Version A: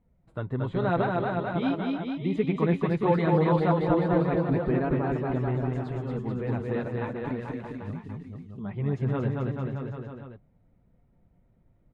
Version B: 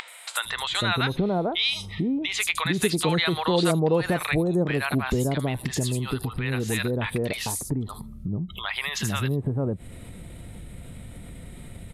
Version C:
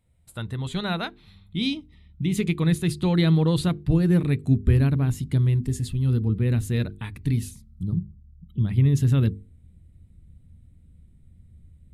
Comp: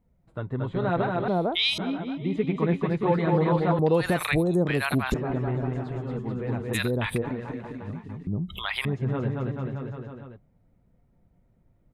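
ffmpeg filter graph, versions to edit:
-filter_complex "[1:a]asplit=4[s0][s1][s2][s3];[0:a]asplit=5[s4][s5][s6][s7][s8];[s4]atrim=end=1.282[s9];[s0]atrim=start=1.278:end=1.782[s10];[s5]atrim=start=1.778:end=3.792[s11];[s1]atrim=start=3.788:end=5.142[s12];[s6]atrim=start=5.138:end=6.75[s13];[s2]atrim=start=6.73:end=7.23[s14];[s7]atrim=start=7.21:end=8.272[s15];[s3]atrim=start=8.268:end=8.852[s16];[s8]atrim=start=8.848[s17];[s9][s10]acrossfade=d=0.004:c1=hsin:c2=hsin[s18];[s18][s11]acrossfade=d=0.004:c1=hsin:c2=hsin[s19];[s19][s12]acrossfade=d=0.004:c1=hsin:c2=hsin[s20];[s20][s13]acrossfade=d=0.004:c1=hsin:c2=hsin[s21];[s21][s14]acrossfade=d=0.02:c1=tri:c2=tri[s22];[s22][s15]acrossfade=d=0.02:c1=tri:c2=tri[s23];[s23][s16]acrossfade=d=0.004:c1=hsin:c2=hsin[s24];[s24][s17]acrossfade=d=0.004:c1=hsin:c2=hsin"

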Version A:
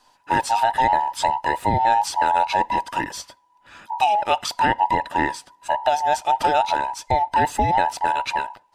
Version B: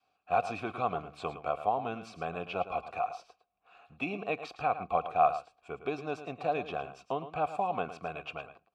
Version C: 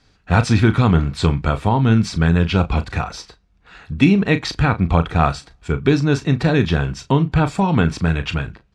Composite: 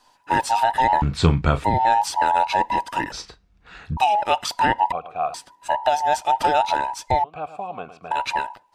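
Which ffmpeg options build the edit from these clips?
-filter_complex "[2:a]asplit=2[s0][s1];[1:a]asplit=2[s2][s3];[0:a]asplit=5[s4][s5][s6][s7][s8];[s4]atrim=end=1.022[s9];[s0]atrim=start=1.018:end=1.642[s10];[s5]atrim=start=1.638:end=3.122[s11];[s1]atrim=start=3.118:end=3.972[s12];[s6]atrim=start=3.968:end=4.922[s13];[s2]atrim=start=4.918:end=5.342[s14];[s7]atrim=start=5.338:end=7.242[s15];[s3]atrim=start=7.238:end=8.112[s16];[s8]atrim=start=8.108[s17];[s9][s10]acrossfade=d=0.004:c1=hsin:c2=hsin[s18];[s18][s11]acrossfade=d=0.004:c1=hsin:c2=hsin[s19];[s19][s12]acrossfade=d=0.004:c1=hsin:c2=hsin[s20];[s20][s13]acrossfade=d=0.004:c1=hsin:c2=hsin[s21];[s21][s14]acrossfade=d=0.004:c1=hsin:c2=hsin[s22];[s22][s15]acrossfade=d=0.004:c1=hsin:c2=hsin[s23];[s23][s16]acrossfade=d=0.004:c1=hsin:c2=hsin[s24];[s24][s17]acrossfade=d=0.004:c1=hsin:c2=hsin"

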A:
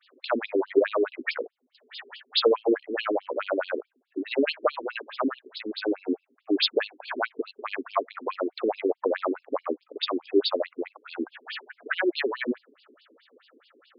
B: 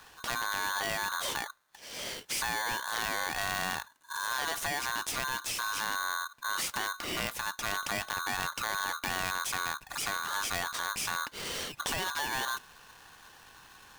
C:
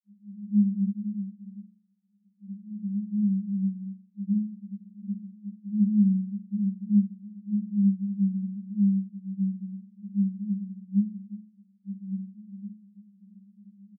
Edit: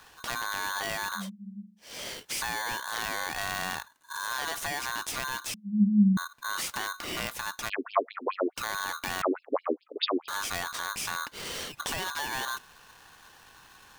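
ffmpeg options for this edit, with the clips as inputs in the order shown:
-filter_complex "[2:a]asplit=2[s0][s1];[0:a]asplit=2[s2][s3];[1:a]asplit=5[s4][s5][s6][s7][s8];[s4]atrim=end=1.3[s9];[s0]atrim=start=1.14:end=1.92[s10];[s5]atrim=start=1.76:end=5.542[s11];[s1]atrim=start=5.538:end=6.172[s12];[s6]atrim=start=6.168:end=7.7[s13];[s2]atrim=start=7.68:end=8.58[s14];[s7]atrim=start=8.56:end=9.222[s15];[s3]atrim=start=9.218:end=10.282[s16];[s8]atrim=start=10.278[s17];[s9][s10]acrossfade=d=0.16:c1=tri:c2=tri[s18];[s18][s11]acrossfade=d=0.16:c1=tri:c2=tri[s19];[s19][s12]acrossfade=d=0.004:c1=hsin:c2=hsin[s20];[s20][s13]acrossfade=d=0.004:c1=hsin:c2=hsin[s21];[s21][s14]acrossfade=d=0.02:c1=tri:c2=tri[s22];[s22][s15]acrossfade=d=0.02:c1=tri:c2=tri[s23];[s23][s16]acrossfade=d=0.004:c1=hsin:c2=hsin[s24];[s24][s17]acrossfade=d=0.004:c1=hsin:c2=hsin"

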